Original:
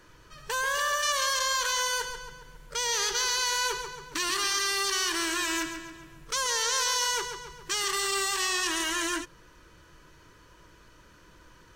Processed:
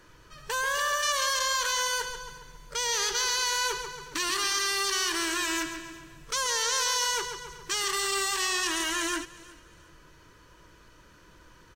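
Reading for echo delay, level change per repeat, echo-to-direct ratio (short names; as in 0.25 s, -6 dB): 0.36 s, -10.5 dB, -20.5 dB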